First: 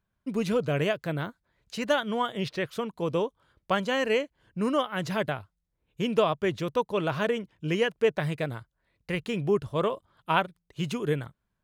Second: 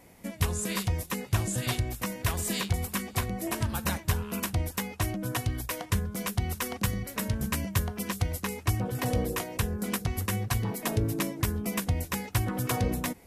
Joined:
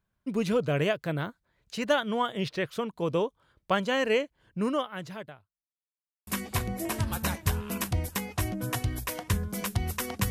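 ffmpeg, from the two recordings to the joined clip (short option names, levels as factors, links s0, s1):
-filter_complex "[0:a]apad=whole_dur=10.3,atrim=end=10.3,asplit=2[s0][s1];[s0]atrim=end=5.8,asetpts=PTS-STARTPTS,afade=t=out:st=4.58:d=1.22:c=qua[s2];[s1]atrim=start=5.8:end=6.27,asetpts=PTS-STARTPTS,volume=0[s3];[1:a]atrim=start=2.89:end=6.92,asetpts=PTS-STARTPTS,afade=t=in:d=0.004:c=hsin[s4];[s2][s3][s4]concat=n=3:v=0:a=1"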